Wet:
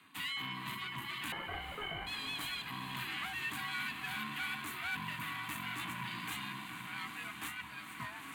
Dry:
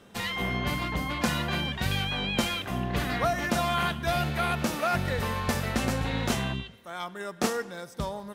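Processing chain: reverb removal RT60 1.6 s; diffused feedback echo 0.924 s, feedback 54%, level -11 dB; tube stage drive 33 dB, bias 0.45; frequency shift +490 Hz; fixed phaser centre 2300 Hz, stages 4; 1.32–2.07 inverted band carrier 3200 Hz; ring modulator 420 Hz; on a send: diffused feedback echo 0.476 s, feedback 53%, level -11.5 dB; on the sum: gain +3 dB

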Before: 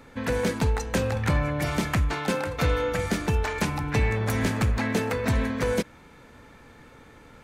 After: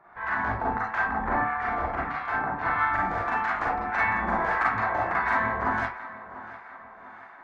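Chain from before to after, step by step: spectral gate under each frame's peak -10 dB weak; band shelf 1200 Hz +13 dB; reverb RT60 0.35 s, pre-delay 35 ms, DRR -4.5 dB; harmonic tremolo 1.6 Hz, depth 70%, crossover 900 Hz; tape spacing loss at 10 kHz 42 dB, from 2.78 s at 10 kHz 28 dB; tape echo 0.692 s, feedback 52%, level -15 dB, low-pass 3600 Hz; gain -2 dB

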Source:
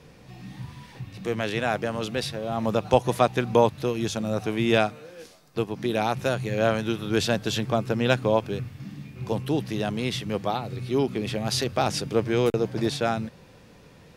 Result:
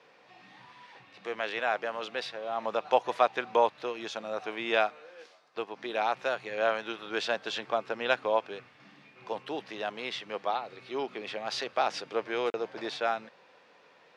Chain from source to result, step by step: BPF 670–4900 Hz; high shelf 3700 Hz -8.5 dB

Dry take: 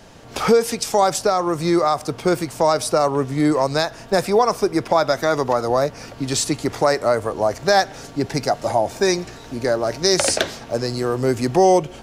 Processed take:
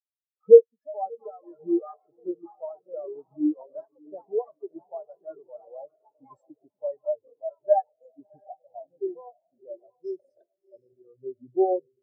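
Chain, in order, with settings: echoes that change speed 0.49 s, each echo +5 st, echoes 3, each echo -6 dB; diffused feedback echo 0.669 s, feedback 46%, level -5 dB; spectral expander 4:1; gain -1 dB

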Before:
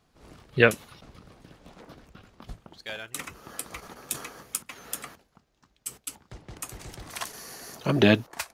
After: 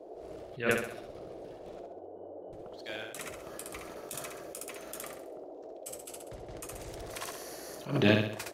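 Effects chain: 1.79–2.53 octave resonator F#, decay 0.36 s; band noise 310–690 Hz -42 dBFS; feedback echo 65 ms, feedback 45%, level -5 dB; attack slew limiter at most 160 dB/s; gain -5.5 dB

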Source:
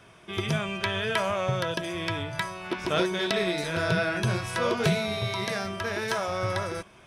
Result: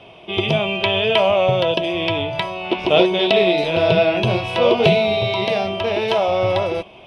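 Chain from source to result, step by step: EQ curve 160 Hz 0 dB, 760 Hz +10 dB, 1600 Hz -11 dB, 2800 Hz +11 dB, 7000 Hz -15 dB; gain +5.5 dB

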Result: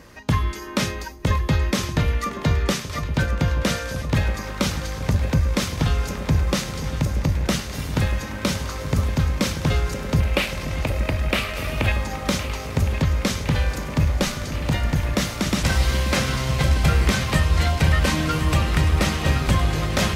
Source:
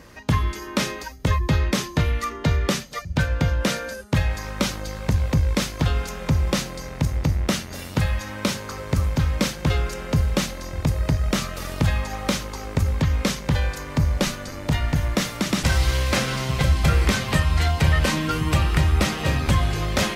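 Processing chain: 10.2–11.92 fifteen-band EQ 160 Hz -11 dB, 630 Hz +4 dB, 2500 Hz +11 dB, 6300 Hz -10 dB; echo with dull and thin repeats by turns 0.532 s, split 840 Hz, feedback 87%, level -10.5 dB

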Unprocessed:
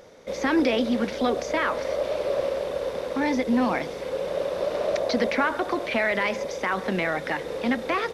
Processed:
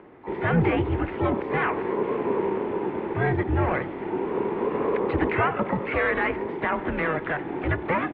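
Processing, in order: harmoniser -7 st -12 dB, +3 st -11 dB, +12 st -9 dB; mistuned SSB -160 Hz 250–2700 Hz

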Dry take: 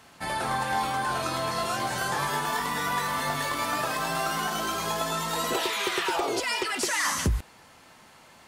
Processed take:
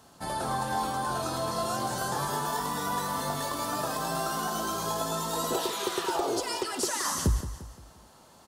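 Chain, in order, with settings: bell 2200 Hz -14 dB 1 oct; feedback echo 0.174 s, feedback 43%, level -12 dB

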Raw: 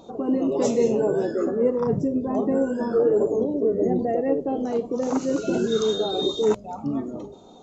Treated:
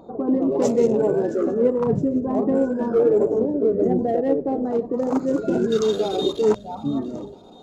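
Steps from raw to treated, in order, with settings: Wiener smoothing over 15 samples; on a send: thin delay 0.667 s, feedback 52%, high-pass 2000 Hz, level -17.5 dB; on the sum: gain +2.5 dB

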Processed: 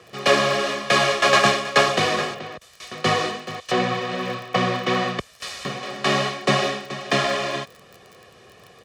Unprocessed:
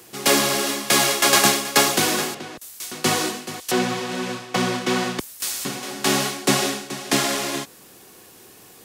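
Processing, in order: LPF 3400 Hz 12 dB/oct; crackle 26/s -34 dBFS; HPF 50 Hz; comb 1.7 ms, depth 65%; gain +1 dB

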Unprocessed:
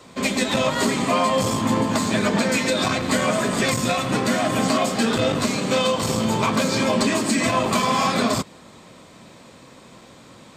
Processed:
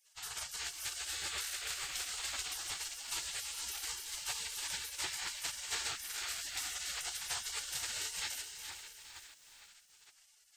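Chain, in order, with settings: split-band echo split 640 Hz, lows 0.459 s, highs 0.286 s, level -7 dB; spectral gate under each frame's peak -25 dB weak; lo-fi delay 0.416 s, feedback 55%, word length 8-bit, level -12 dB; gain -6 dB

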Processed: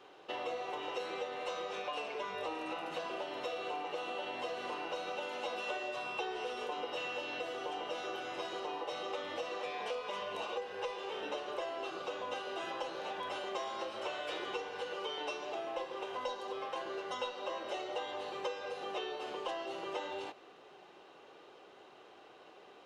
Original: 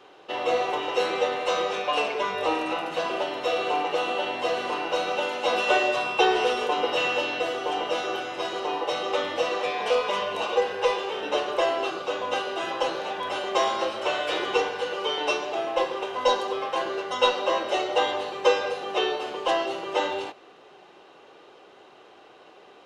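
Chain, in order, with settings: compressor 5:1, threshold -31 dBFS, peak gain reduction 15 dB; gain -6 dB

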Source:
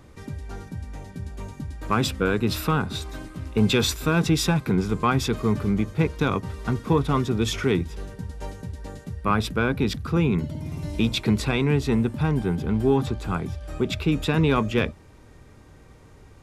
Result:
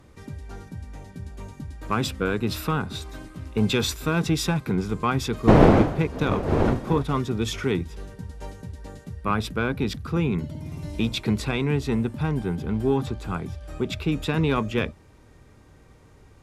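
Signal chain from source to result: 5.47–7.02 wind noise 450 Hz -19 dBFS; added harmonics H 7 -32 dB, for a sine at 0.5 dBFS; gain -1 dB

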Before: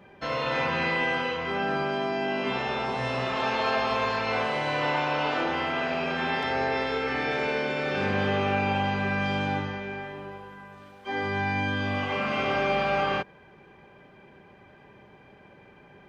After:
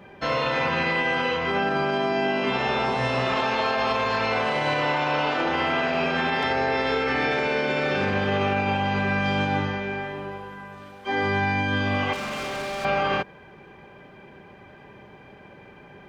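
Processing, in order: limiter -20.5 dBFS, peak gain reduction 6.5 dB; 12.13–12.85 hard clip -34.5 dBFS, distortion -16 dB; gain +5.5 dB

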